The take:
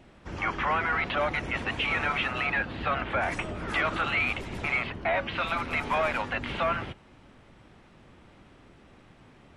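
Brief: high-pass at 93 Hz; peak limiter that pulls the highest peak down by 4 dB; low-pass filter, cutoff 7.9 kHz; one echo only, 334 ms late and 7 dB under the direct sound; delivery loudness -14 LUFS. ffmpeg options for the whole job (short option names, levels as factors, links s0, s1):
-af "highpass=93,lowpass=7900,alimiter=limit=0.0944:level=0:latency=1,aecho=1:1:334:0.447,volume=5.96"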